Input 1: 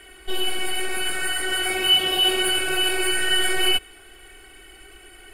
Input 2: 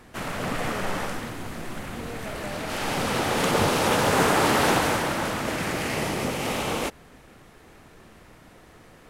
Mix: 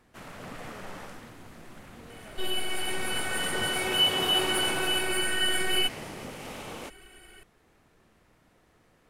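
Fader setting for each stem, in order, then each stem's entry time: -6.0, -13.0 dB; 2.10, 0.00 s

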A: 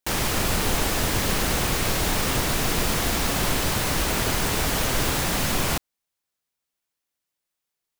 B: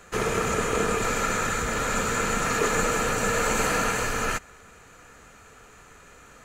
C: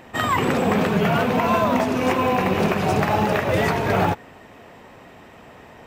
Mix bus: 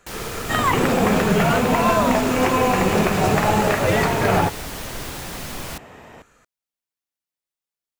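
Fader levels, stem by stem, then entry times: -8.0, -7.0, +1.5 dB; 0.00, 0.00, 0.35 s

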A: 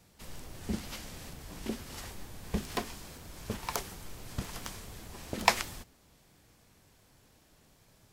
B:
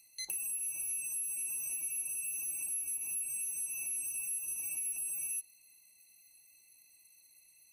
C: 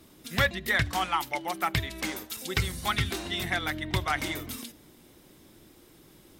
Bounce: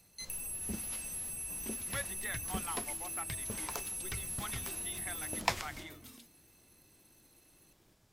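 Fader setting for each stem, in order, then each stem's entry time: -6.5, -3.5, -15.0 dB; 0.00, 0.00, 1.55 s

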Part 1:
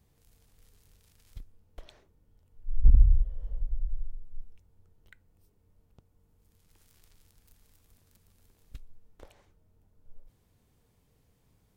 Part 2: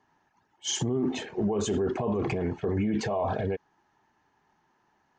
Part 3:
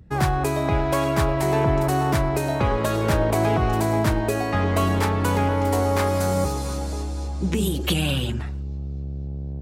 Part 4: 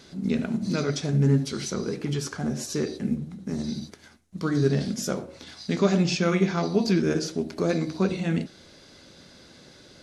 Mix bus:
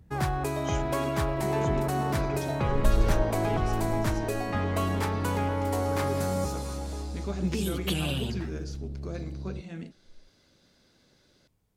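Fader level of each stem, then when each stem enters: -6.0, -13.0, -7.0, -14.0 dB; 0.00, 0.00, 0.00, 1.45 s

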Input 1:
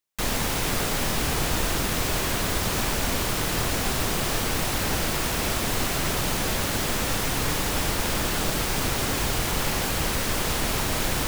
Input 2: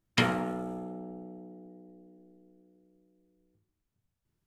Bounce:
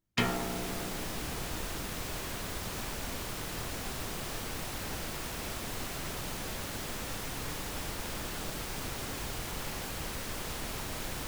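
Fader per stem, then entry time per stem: -12.5, -4.0 dB; 0.00, 0.00 s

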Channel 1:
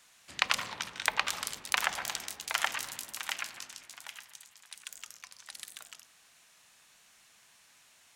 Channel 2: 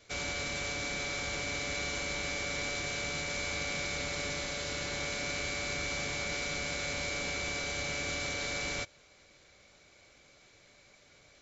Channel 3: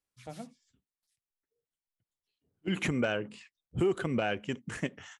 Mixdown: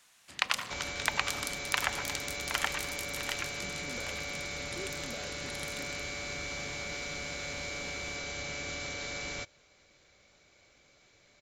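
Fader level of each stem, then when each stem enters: -1.5, -3.0, -16.5 dB; 0.00, 0.60, 0.95 s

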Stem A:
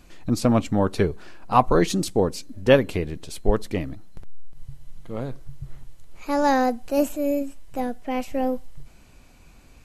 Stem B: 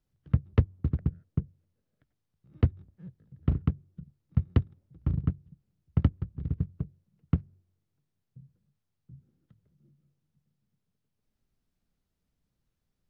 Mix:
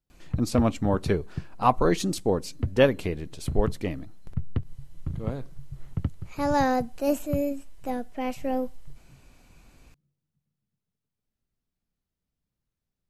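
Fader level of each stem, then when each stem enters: -3.5, -5.0 dB; 0.10, 0.00 s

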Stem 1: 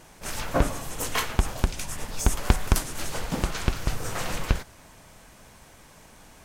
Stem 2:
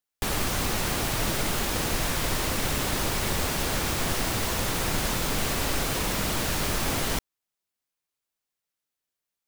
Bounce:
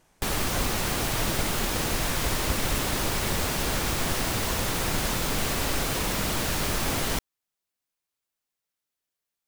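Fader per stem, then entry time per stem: -13.0, 0.0 dB; 0.00, 0.00 s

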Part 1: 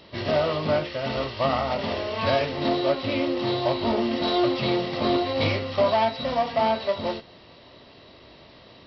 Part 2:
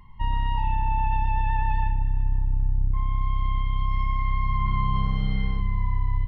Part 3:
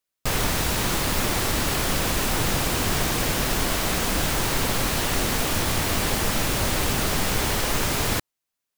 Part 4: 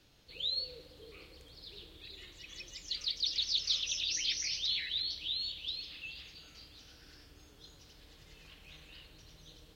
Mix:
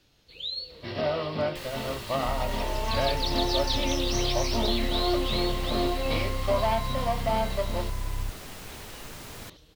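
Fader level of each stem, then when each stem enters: -5.0, -8.0, -18.5, +1.0 dB; 0.70, 2.05, 1.30, 0.00 s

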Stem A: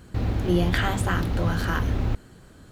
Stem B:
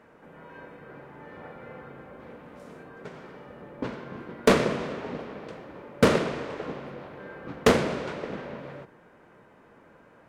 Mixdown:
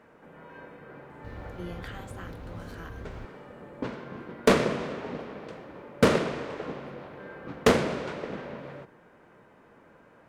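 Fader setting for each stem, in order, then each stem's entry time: -17.5, -1.0 dB; 1.10, 0.00 s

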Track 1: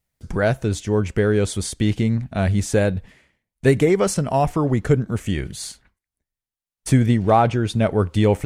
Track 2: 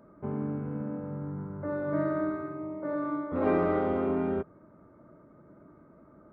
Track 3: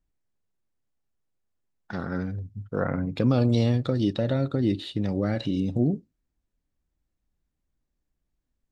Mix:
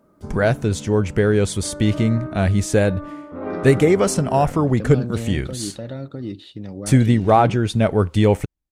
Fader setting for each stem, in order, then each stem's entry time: +1.5, -2.0, -6.0 dB; 0.00, 0.00, 1.60 s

